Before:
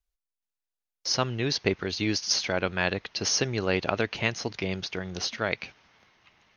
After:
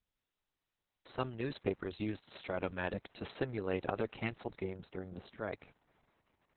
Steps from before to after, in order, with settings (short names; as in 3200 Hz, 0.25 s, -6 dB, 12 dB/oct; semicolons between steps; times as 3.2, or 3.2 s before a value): bell 3600 Hz -9 dB 2.4 oct, from 4.61 s -15 dB; gain -6.5 dB; Opus 6 kbps 48000 Hz